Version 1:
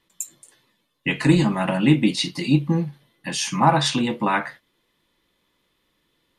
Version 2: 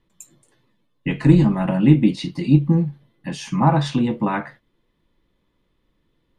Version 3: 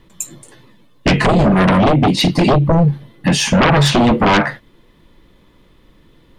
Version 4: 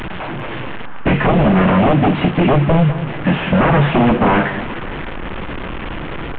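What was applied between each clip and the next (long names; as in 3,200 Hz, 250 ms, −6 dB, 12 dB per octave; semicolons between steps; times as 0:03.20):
spectral tilt −3 dB per octave; level −3 dB
downward compressor 10 to 1, threshold −17 dBFS, peak gain reduction 11 dB; sine wavefolder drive 14 dB, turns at −8 dBFS
linear delta modulator 16 kbit/s, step −18 dBFS; delay that swaps between a low-pass and a high-pass 199 ms, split 880 Hz, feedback 55%, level −11 dB; noise in a band 780–1,700 Hz −38 dBFS; level −1 dB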